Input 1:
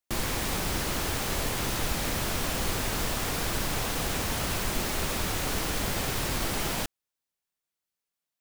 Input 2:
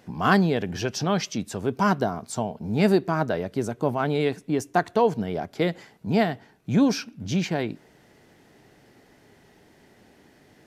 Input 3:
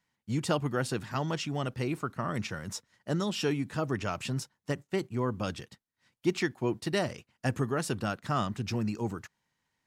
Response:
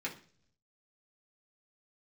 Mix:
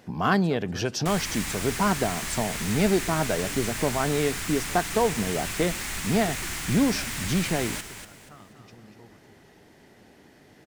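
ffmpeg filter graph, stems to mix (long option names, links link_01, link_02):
-filter_complex "[0:a]equalizer=frequency=500:width_type=o:width=1:gain=-10,equalizer=frequency=2000:width_type=o:width=1:gain=8,equalizer=frequency=8000:width_type=o:width=1:gain=8,adelay=950,volume=-6dB,asplit=2[link_01][link_02];[link_02]volume=-8.5dB[link_03];[1:a]acompressor=threshold=-27dB:ratio=1.5,volume=1.5dB,asplit=2[link_04][link_05];[2:a]volume=-16dB,asplit=2[link_06][link_07];[link_07]volume=-12dB[link_08];[link_05]apad=whole_len=435075[link_09];[link_06][link_09]sidechaingate=range=-33dB:threshold=-53dB:ratio=16:detection=peak[link_10];[link_03][link_08]amix=inputs=2:normalize=0,aecho=0:1:240|480|720|960|1200:1|0.32|0.102|0.0328|0.0105[link_11];[link_01][link_04][link_10][link_11]amix=inputs=4:normalize=0"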